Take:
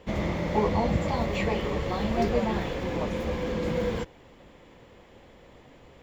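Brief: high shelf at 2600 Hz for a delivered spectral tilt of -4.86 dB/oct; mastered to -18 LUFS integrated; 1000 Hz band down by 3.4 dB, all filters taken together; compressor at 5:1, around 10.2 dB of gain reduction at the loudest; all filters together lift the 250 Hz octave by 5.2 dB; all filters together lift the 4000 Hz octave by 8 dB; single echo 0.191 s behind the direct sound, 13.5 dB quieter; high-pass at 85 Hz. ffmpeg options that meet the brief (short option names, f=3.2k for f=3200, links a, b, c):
-af "highpass=85,equalizer=f=250:t=o:g=7,equalizer=f=1k:t=o:g=-6,highshelf=f=2.6k:g=5.5,equalizer=f=4k:t=o:g=6,acompressor=threshold=-30dB:ratio=5,aecho=1:1:191:0.211,volume=15dB"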